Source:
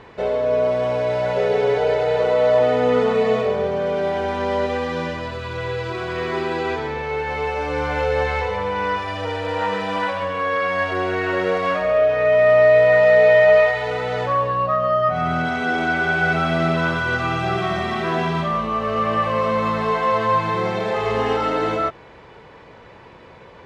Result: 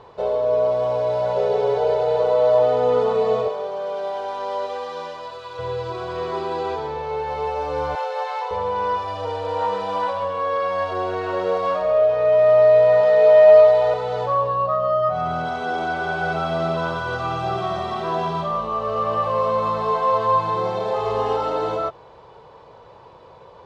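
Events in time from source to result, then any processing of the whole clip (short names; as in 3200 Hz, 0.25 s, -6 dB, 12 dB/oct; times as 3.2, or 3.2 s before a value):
3.48–5.59 HPF 790 Hz 6 dB/oct
7.95–8.51 HPF 620 Hz 24 dB/oct
12.08–13.94 echo 0.926 s -4.5 dB
whole clip: graphic EQ 125/250/500/1000/2000/4000 Hz +3/-6/+6/+8/-10/+5 dB; gain -6 dB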